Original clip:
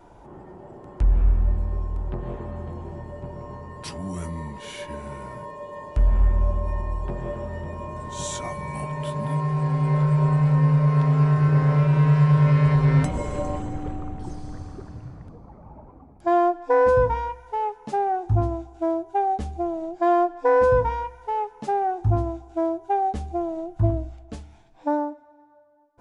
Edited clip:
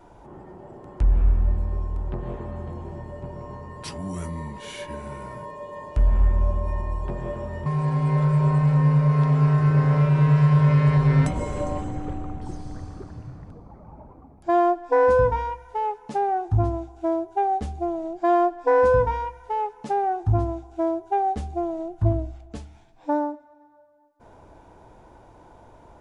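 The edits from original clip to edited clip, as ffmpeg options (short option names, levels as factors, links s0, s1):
-filter_complex "[0:a]asplit=2[s0][s1];[s0]atrim=end=7.662[s2];[s1]atrim=start=9.438[s3];[s2][s3]acrossfade=d=0.004:c1=hsin:c2=hsin"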